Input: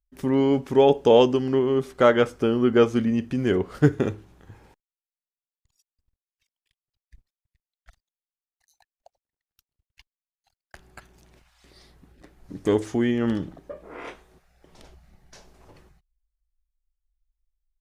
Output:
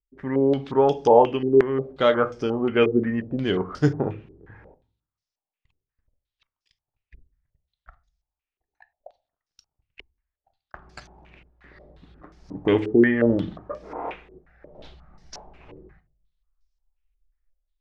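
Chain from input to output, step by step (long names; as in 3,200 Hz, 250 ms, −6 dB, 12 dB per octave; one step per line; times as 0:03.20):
rectangular room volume 290 cubic metres, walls furnished, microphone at 0.47 metres
automatic gain control gain up to 8.5 dB
low-pass on a step sequencer 5.6 Hz 400–5,400 Hz
level −6.5 dB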